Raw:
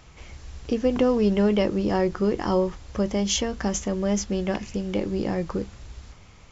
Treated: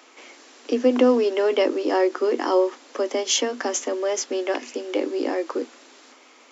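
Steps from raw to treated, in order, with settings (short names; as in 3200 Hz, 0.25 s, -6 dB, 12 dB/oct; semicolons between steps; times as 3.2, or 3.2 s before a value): Chebyshev high-pass 240 Hz, order 10; gain +4.5 dB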